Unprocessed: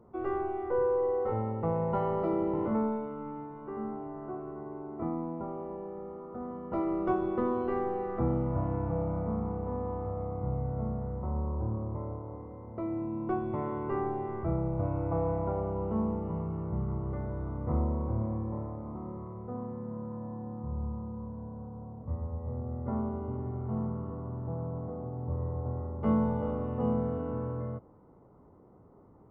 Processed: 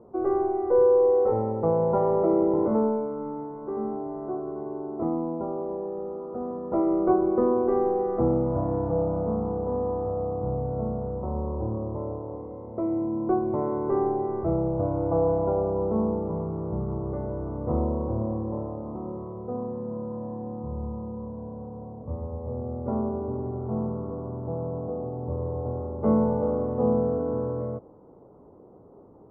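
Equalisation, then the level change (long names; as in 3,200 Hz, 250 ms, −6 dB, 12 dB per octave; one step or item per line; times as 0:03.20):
low-pass filter 1,300 Hz 12 dB per octave
parametric band 480 Hz +9.5 dB 2.1 octaves
0.0 dB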